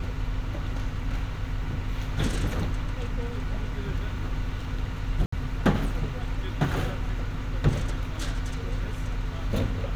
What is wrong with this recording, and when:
5.26–5.32 s: dropout 64 ms

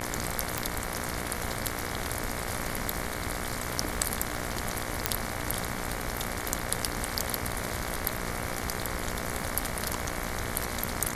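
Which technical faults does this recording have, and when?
buzz 60 Hz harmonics 38 -37 dBFS
crackle 26 per s -37 dBFS
0.58 s: pop
5.06 s: pop -3 dBFS

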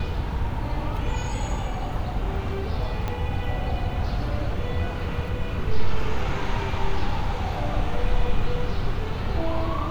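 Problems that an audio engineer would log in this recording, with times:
3.08 s: pop -15 dBFS

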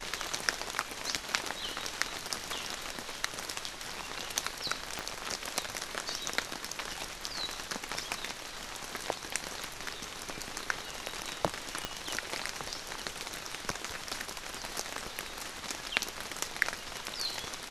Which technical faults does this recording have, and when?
4.99 s: pop -18 dBFS
11.85 s: pop -16 dBFS

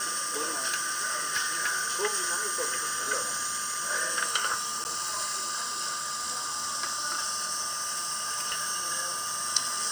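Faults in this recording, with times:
whine 1.2 kHz -36 dBFS
0.56–1.88 s: clipped -23 dBFS
4.84–4.85 s: dropout 9.9 ms
7.67–8.71 s: clipped -26 dBFS

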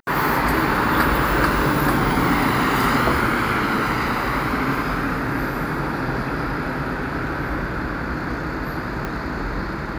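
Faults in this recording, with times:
9.05 s: pop -13 dBFS

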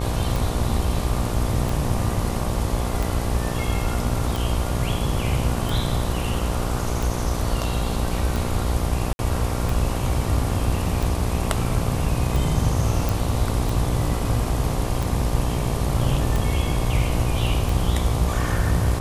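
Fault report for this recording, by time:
buzz 60 Hz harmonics 20 -27 dBFS
tick 45 rpm
9.13–9.19 s: dropout 61 ms
13.09 s: pop

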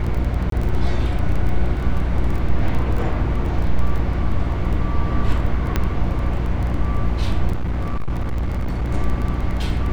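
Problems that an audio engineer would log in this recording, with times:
crackle 14 per s -24 dBFS
hum 60 Hz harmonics 5 -23 dBFS
0.50–0.52 s: dropout 23 ms
5.76 s: pop -6 dBFS
7.53–8.92 s: clipped -18 dBFS

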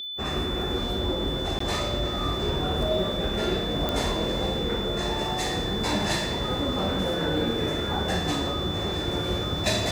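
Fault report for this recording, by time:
whine 3.5 kHz -32 dBFS
1.59–1.60 s: dropout 14 ms
3.89 s: pop -12 dBFS

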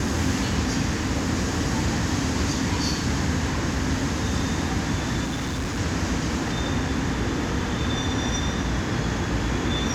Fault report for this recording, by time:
5.24–5.79 s: clipped -24 dBFS

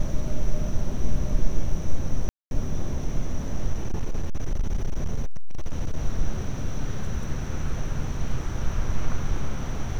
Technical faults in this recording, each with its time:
2.29–2.51 s: dropout 221 ms
3.73–5.97 s: clipped -19 dBFS

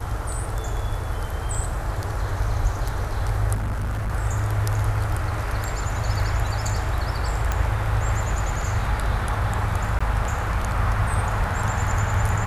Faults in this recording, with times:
3.54–4.12 s: clipped -22.5 dBFS
7.52 s: pop -11 dBFS
9.99–10.01 s: dropout 15 ms

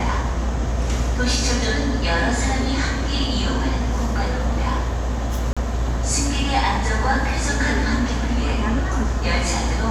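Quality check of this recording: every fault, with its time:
5.53–5.57 s: dropout 36 ms

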